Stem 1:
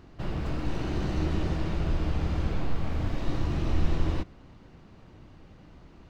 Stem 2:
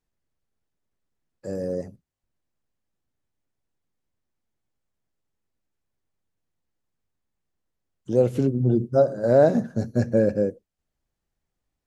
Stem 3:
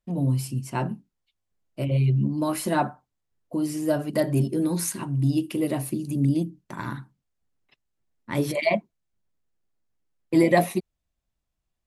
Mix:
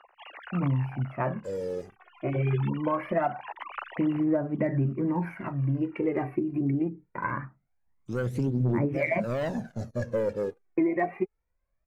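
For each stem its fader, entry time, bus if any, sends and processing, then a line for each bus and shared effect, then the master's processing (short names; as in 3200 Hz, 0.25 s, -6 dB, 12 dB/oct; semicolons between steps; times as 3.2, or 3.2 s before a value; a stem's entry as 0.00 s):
-11.5 dB, 0.00 s, no send, sine-wave speech; HPF 740 Hz 24 dB/oct; auto duck -21 dB, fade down 0.80 s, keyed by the second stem
-14.0 dB, 0.00 s, no send, sample leveller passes 2
+2.0 dB, 0.45 s, no send, elliptic low-pass 2300 Hz, stop band 40 dB; low shelf 190 Hz -4 dB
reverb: off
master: phaser 0.23 Hz, delay 2.9 ms, feedback 61%; compressor 16:1, threshold -22 dBFS, peak gain reduction 14.5 dB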